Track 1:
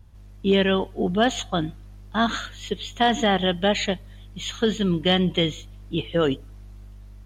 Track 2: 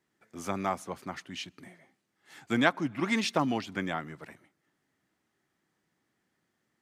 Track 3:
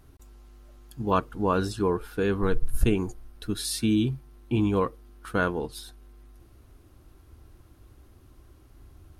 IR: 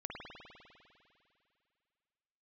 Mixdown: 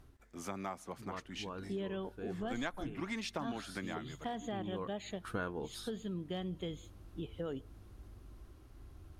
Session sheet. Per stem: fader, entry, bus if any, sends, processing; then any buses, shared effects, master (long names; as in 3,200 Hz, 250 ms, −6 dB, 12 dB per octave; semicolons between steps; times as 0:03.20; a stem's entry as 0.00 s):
−12.5 dB, 1.25 s, no send, parametric band 2,600 Hz −8.5 dB 1.8 octaves
−4.5 dB, 0.00 s, no send, no processing
−3.0 dB, 0.00 s, no send, high-shelf EQ 11,000 Hz −8.5 dB; automatic ducking −16 dB, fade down 0.30 s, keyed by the second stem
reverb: not used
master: downward compressor 2.5 to 1, threshold −39 dBFS, peak gain reduction 11.5 dB